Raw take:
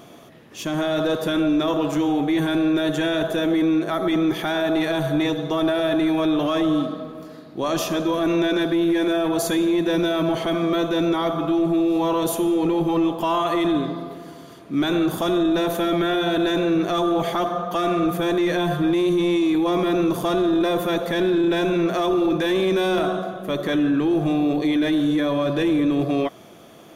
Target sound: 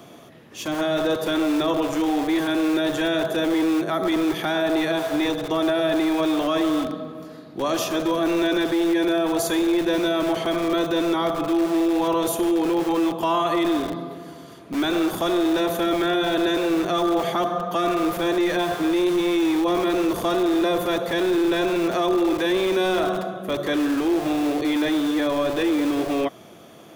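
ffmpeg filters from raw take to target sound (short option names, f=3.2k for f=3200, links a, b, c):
-filter_complex "[0:a]highpass=f=43:w=0.5412,highpass=f=43:w=1.3066,acrossover=split=220|520|6600[a][b][c][d];[a]aeval=exprs='(mod(35.5*val(0)+1,2)-1)/35.5':c=same[e];[e][b][c][d]amix=inputs=4:normalize=0"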